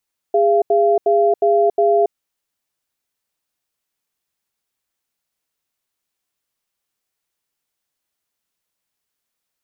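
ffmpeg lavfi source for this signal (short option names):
-f lavfi -i "aevalsrc='0.2*(sin(2*PI*409*t)+sin(2*PI*684*t))*clip(min(mod(t,0.36),0.28-mod(t,0.36))/0.005,0,1)':d=1.75:s=44100"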